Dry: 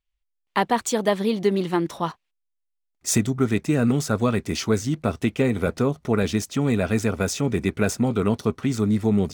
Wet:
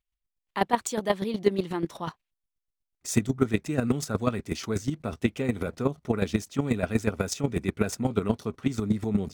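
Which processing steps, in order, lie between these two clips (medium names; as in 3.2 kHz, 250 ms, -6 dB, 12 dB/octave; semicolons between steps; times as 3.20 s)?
square tremolo 8.2 Hz, depth 65%, duty 15%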